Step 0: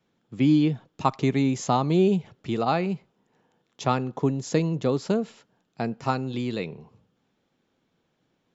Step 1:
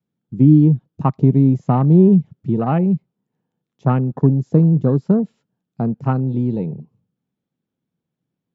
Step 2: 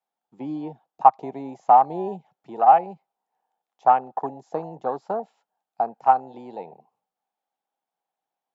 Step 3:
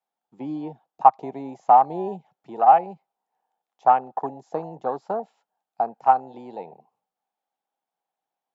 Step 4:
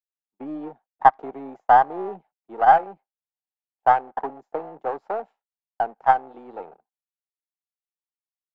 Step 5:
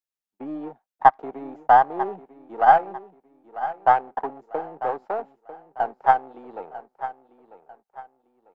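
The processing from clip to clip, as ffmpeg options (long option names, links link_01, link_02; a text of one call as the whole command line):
ffmpeg -i in.wav -filter_complex "[0:a]afwtdn=0.0224,acrossover=split=2800[link_01][link_02];[link_02]acompressor=threshold=-58dB:ratio=4:attack=1:release=60[link_03];[link_01][link_03]amix=inputs=2:normalize=0,equalizer=frequency=150:width=0.67:gain=14" out.wav
ffmpeg -i in.wav -af "highpass=frequency=780:width_type=q:width=6.5,volume=-3dB" out.wav
ffmpeg -i in.wav -af anull out.wav
ffmpeg -i in.wav -filter_complex "[0:a]aeval=exprs='if(lt(val(0),0),0.447*val(0),val(0))':channel_layout=same,acrossover=split=220 2500:gain=0.126 1 0.178[link_01][link_02][link_03];[link_01][link_02][link_03]amix=inputs=3:normalize=0,agate=range=-33dB:threshold=-43dB:ratio=3:detection=peak,volume=2.5dB" out.wav
ffmpeg -i in.wav -af "aecho=1:1:946|1892|2838:0.211|0.0697|0.023" out.wav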